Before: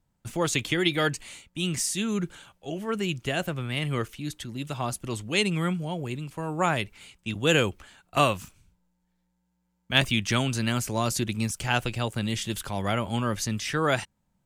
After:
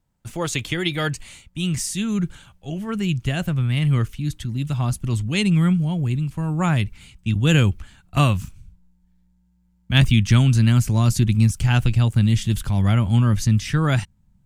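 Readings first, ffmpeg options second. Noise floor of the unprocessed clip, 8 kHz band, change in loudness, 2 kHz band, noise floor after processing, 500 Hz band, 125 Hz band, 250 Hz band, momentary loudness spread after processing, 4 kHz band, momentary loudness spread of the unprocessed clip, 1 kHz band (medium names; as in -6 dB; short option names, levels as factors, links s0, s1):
-75 dBFS, +1.0 dB, +7.0 dB, +0.5 dB, -62 dBFS, -2.0 dB, +13.5 dB, +7.5 dB, 11 LU, +1.0 dB, 11 LU, -0.5 dB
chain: -af "asubboost=boost=7.5:cutoff=170,volume=1.12"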